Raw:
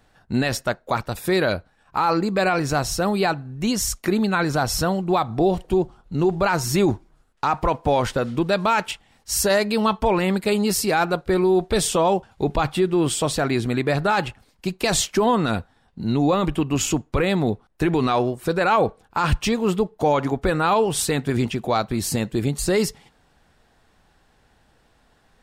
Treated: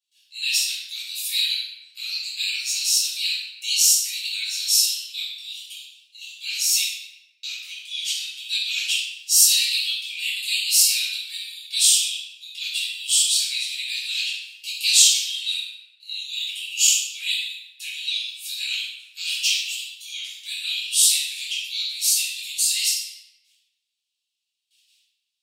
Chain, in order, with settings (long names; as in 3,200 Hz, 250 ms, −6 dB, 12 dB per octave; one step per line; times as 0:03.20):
Butterworth high-pass 2,800 Hz 48 dB per octave
noise gate with hold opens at −59 dBFS
rectangular room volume 520 cubic metres, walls mixed, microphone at 5.5 metres